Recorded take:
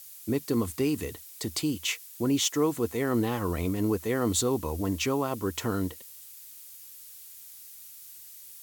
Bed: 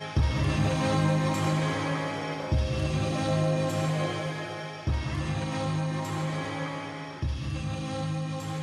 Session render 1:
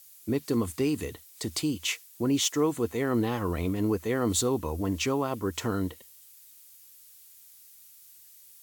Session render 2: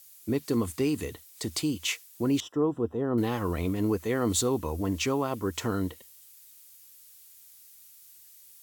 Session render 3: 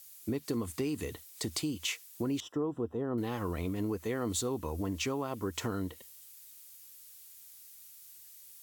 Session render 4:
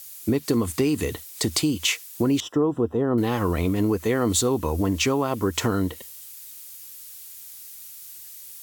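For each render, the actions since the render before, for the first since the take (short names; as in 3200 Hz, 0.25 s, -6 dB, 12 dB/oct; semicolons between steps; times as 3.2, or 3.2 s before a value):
noise print and reduce 6 dB
2.4–3.18 running mean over 20 samples
compressor 3:1, threshold -32 dBFS, peak gain reduction 8 dB
gain +11.5 dB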